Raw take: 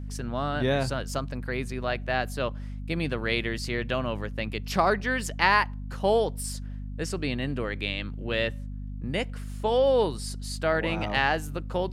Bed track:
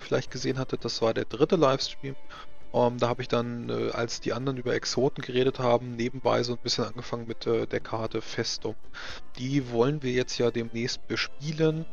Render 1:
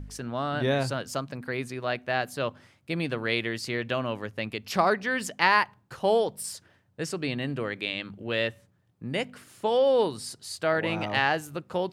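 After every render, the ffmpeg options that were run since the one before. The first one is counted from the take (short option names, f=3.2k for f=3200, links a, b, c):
-af "bandreject=f=50:t=h:w=4,bandreject=f=100:t=h:w=4,bandreject=f=150:t=h:w=4,bandreject=f=200:t=h:w=4,bandreject=f=250:t=h:w=4"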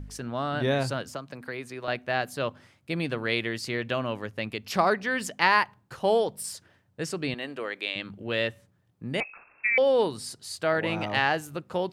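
-filter_complex "[0:a]asettb=1/sr,asplit=3[a][b][c];[a]atrim=end=1.084[d];[b]atrim=start=1.08:end=1.88,asetpts=PTS-STARTPTS,afade=t=in:d=0.004:c=qsin,afade=t=out:st=0.796:d=0.004:c=qsin,acrossover=split=310|2700[e][f][g];[e]acompressor=threshold=-45dB:ratio=4[h];[f]acompressor=threshold=-34dB:ratio=4[i];[g]acompressor=threshold=-46dB:ratio=4[j];[h][i][j]amix=inputs=3:normalize=0[k];[c]atrim=start=1.876[l];[d][k]acrossfade=d=0.004:c1=hsin:c2=qsin[m];[m][l]acrossfade=d=0.004:c1=qsin:c2=hsin,asettb=1/sr,asplit=3[n][o][p];[n]atrim=end=7.344[q];[o]atrim=start=7.34:end=7.96,asetpts=PTS-STARTPTS,afade=t=in:d=0.004:c=qsin,afade=t=out:st=0.616:d=0.004:c=qsin,highpass=390[r];[p]atrim=start=7.956[s];[q][r]acrossfade=d=0.004:c1=hsin:c2=qsin[t];[t][s]acrossfade=d=0.004:c1=qsin:c2=hsin,asettb=1/sr,asplit=3[u][v][w];[u]atrim=end=9.204[x];[v]atrim=start=9.2:end=9.78,asetpts=PTS-STARTPTS,afade=t=in:d=0.004:c=qsin,afade=t=out:st=0.576:d=0.004:c=qsin,lowpass=f=2.4k:t=q:w=0.5098,lowpass=f=2.4k:t=q:w=0.6013,lowpass=f=2.4k:t=q:w=0.9,lowpass=f=2.4k:t=q:w=2.563,afreqshift=-2800[y];[w]atrim=start=9.776[z];[x][y]acrossfade=d=0.004:c1=hsin:c2=qsin[aa];[aa][z]acrossfade=d=0.004:c1=qsin:c2=hsin"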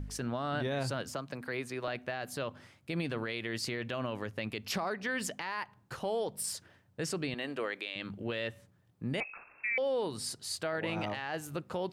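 -af "acompressor=threshold=-28dB:ratio=6,alimiter=level_in=1dB:limit=-24dB:level=0:latency=1:release=31,volume=-1dB"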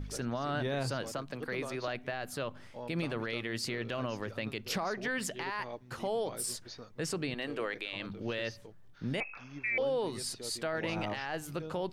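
-filter_complex "[1:a]volume=-20.5dB[a];[0:a][a]amix=inputs=2:normalize=0"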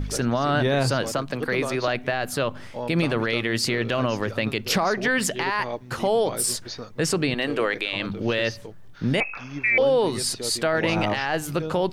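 -af "volume=12dB"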